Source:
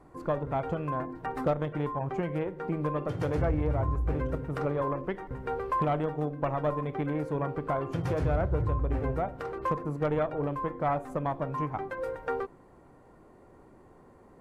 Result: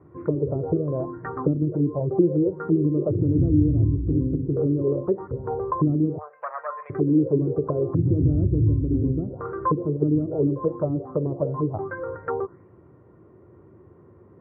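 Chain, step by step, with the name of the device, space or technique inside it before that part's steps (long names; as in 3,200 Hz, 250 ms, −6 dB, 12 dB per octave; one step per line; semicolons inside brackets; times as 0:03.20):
0:06.18–0:06.90: inverse Chebyshev high-pass filter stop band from 320 Hz, stop band 40 dB
spectral tilt −3.5 dB per octave
envelope filter bass rig (envelope-controlled low-pass 280–4,200 Hz down, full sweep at −19 dBFS; loudspeaker in its box 84–2,200 Hz, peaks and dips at 98 Hz +5 dB, 250 Hz −5 dB, 360 Hz +7 dB, 780 Hz −7 dB, 1,200 Hz +4 dB)
level −3 dB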